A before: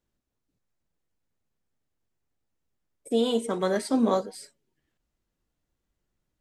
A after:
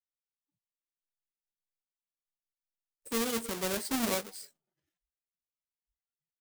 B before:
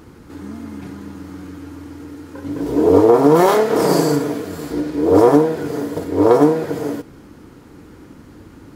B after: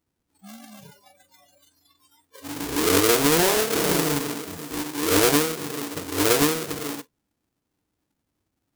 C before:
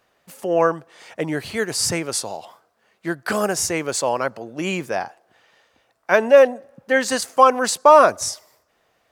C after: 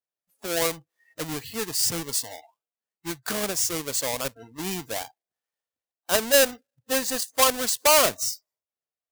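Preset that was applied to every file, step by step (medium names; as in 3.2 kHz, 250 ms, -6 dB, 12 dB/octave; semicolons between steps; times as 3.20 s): square wave that keeps the level; treble shelf 4.3 kHz +11.5 dB; spectral noise reduction 29 dB; trim -13 dB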